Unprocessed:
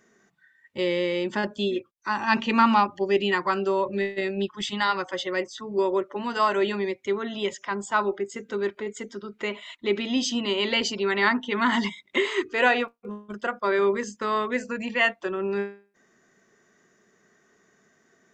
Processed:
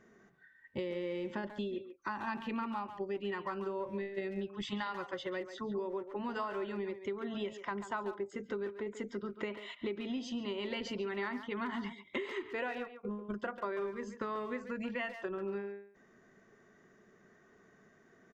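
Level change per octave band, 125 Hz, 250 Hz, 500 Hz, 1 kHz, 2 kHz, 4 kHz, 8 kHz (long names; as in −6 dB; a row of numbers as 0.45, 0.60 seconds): can't be measured, −11.0 dB, −12.0 dB, −15.0 dB, −16.0 dB, −17.0 dB, −20.0 dB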